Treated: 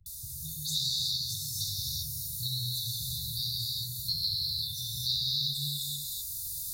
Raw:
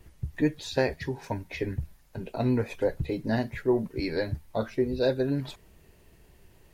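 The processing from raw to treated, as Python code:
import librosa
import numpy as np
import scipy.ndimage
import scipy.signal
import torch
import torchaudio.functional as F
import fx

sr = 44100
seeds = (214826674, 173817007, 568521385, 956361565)

p1 = fx.tilt_eq(x, sr, slope=4.5)
p2 = fx.dispersion(p1, sr, late='highs', ms=62.0, hz=760.0)
p3 = p2 + fx.echo_single(p2, sr, ms=254, db=-9.5, dry=0)
p4 = fx.rider(p3, sr, range_db=10, speed_s=2.0)
p5 = fx.env_phaser(p4, sr, low_hz=210.0, high_hz=2100.0, full_db=-25.0)
p6 = fx.brickwall_bandstop(p5, sr, low_hz=160.0, high_hz=3500.0)
p7 = fx.rev_gated(p6, sr, seeds[0], gate_ms=410, shape='flat', drr_db=-6.5)
y = fx.band_squash(p7, sr, depth_pct=70)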